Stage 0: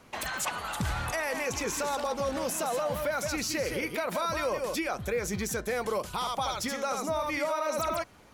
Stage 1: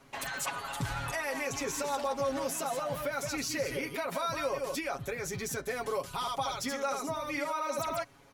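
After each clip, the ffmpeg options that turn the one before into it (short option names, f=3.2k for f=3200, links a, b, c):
-af "aecho=1:1:7.3:0.8,volume=-5dB"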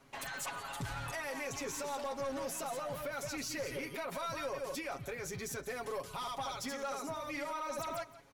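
-af "aecho=1:1:172:0.119,aeval=exprs='(tanh(25.1*val(0)+0.15)-tanh(0.15))/25.1':c=same,volume=-4dB"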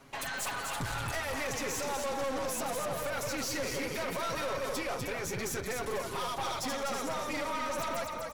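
-filter_complex "[0:a]asplit=6[a][b][c][d][e][f];[b]adelay=248,afreqshift=-34,volume=-6dB[g];[c]adelay=496,afreqshift=-68,volume=-13.3dB[h];[d]adelay=744,afreqshift=-102,volume=-20.7dB[i];[e]adelay=992,afreqshift=-136,volume=-28dB[j];[f]adelay=1240,afreqshift=-170,volume=-35.3dB[k];[a][g][h][i][j][k]amix=inputs=6:normalize=0,aeval=exprs='0.0473*(cos(1*acos(clip(val(0)/0.0473,-1,1)))-cos(1*PI/2))+0.0106*(cos(5*acos(clip(val(0)/0.0473,-1,1)))-cos(5*PI/2))+0.0075*(cos(6*acos(clip(val(0)/0.0473,-1,1)))-cos(6*PI/2))':c=same"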